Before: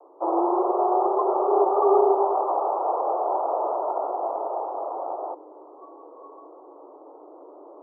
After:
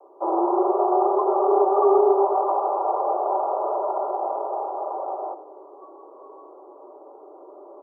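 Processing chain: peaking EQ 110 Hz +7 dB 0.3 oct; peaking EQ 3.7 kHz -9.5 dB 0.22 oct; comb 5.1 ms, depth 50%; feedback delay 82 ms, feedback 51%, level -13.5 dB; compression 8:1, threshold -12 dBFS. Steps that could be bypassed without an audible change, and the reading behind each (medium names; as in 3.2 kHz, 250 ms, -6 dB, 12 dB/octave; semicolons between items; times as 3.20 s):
peaking EQ 110 Hz: input has nothing below 290 Hz; peaking EQ 3.7 kHz: input has nothing above 1.4 kHz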